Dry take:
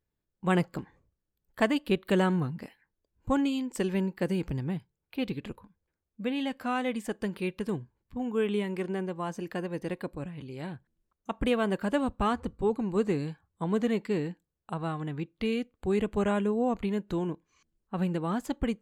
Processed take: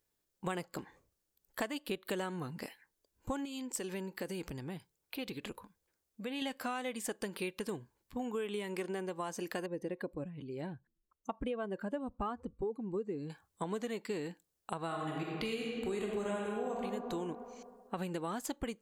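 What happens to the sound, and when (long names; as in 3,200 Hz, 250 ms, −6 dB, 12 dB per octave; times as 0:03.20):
0:03.45–0:06.42: downward compressor 2 to 1, threshold −40 dBFS
0:09.66–0:13.30: expanding power law on the bin magnitudes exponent 1.5
0:14.86–0:16.82: thrown reverb, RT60 1.8 s, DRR −2 dB
whole clip: bass and treble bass −10 dB, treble +8 dB; downward compressor 6 to 1, threshold −38 dBFS; level +3 dB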